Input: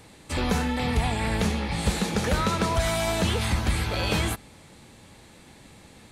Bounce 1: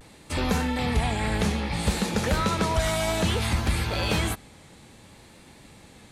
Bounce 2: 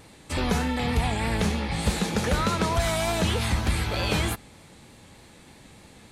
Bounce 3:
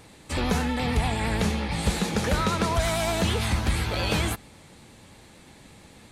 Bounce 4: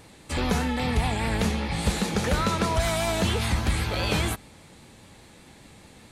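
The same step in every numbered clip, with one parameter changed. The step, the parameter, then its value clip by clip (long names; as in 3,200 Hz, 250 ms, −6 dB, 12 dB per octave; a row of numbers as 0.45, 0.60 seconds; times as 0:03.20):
pitch vibrato, speed: 0.6, 3.3, 8.8, 5 Hertz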